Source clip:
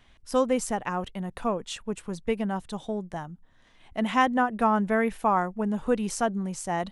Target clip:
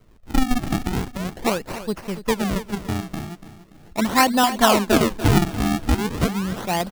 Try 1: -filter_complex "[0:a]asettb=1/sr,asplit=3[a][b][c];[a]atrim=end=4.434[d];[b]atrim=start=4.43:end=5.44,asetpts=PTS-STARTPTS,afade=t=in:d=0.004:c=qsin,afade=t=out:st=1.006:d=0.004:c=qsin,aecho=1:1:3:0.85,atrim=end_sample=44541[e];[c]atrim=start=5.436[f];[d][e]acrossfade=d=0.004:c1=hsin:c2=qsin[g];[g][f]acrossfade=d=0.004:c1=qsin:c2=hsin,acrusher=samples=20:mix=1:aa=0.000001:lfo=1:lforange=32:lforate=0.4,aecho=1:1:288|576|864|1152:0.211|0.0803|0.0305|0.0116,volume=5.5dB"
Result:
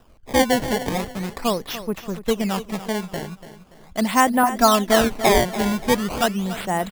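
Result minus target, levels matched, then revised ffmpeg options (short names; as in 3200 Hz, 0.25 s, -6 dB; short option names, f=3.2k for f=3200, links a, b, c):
decimation with a swept rate: distortion -8 dB
-filter_complex "[0:a]asettb=1/sr,asplit=3[a][b][c];[a]atrim=end=4.434[d];[b]atrim=start=4.43:end=5.44,asetpts=PTS-STARTPTS,afade=t=in:d=0.004:c=qsin,afade=t=out:st=1.006:d=0.004:c=qsin,aecho=1:1:3:0.85,atrim=end_sample=44541[e];[c]atrim=start=5.436[f];[d][e]acrossfade=d=0.004:c1=hsin:c2=qsin[g];[g][f]acrossfade=d=0.004:c1=qsin:c2=hsin,acrusher=samples=50:mix=1:aa=0.000001:lfo=1:lforange=80:lforate=0.4,aecho=1:1:288|576|864|1152:0.211|0.0803|0.0305|0.0116,volume=5.5dB"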